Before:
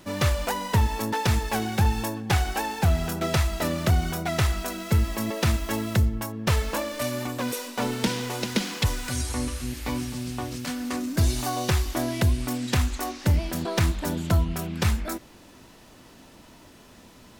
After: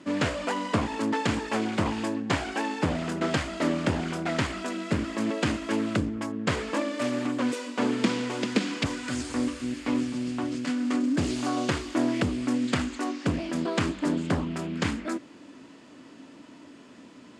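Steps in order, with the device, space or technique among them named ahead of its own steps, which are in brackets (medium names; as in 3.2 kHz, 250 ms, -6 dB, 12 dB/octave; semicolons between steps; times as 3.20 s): full-range speaker at full volume (loudspeaker Doppler distortion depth 0.74 ms; cabinet simulation 170–7600 Hz, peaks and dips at 280 Hz +10 dB, 790 Hz -5 dB, 3.9 kHz -5 dB, 5.8 kHz -7 dB)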